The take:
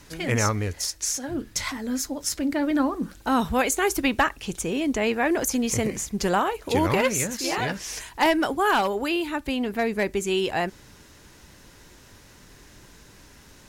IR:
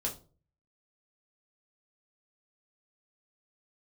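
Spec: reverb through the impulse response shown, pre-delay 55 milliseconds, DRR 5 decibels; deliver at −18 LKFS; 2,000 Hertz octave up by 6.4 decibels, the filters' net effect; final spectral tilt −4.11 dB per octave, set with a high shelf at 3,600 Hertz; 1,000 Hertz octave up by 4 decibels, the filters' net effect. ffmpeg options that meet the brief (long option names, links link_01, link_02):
-filter_complex "[0:a]equalizer=frequency=1000:width_type=o:gain=3.5,equalizer=frequency=2000:width_type=o:gain=8,highshelf=frequency=3600:gain=-4.5,asplit=2[link_01][link_02];[1:a]atrim=start_sample=2205,adelay=55[link_03];[link_02][link_03]afir=irnorm=-1:irlink=0,volume=-7.5dB[link_04];[link_01][link_04]amix=inputs=2:normalize=0,volume=3dB"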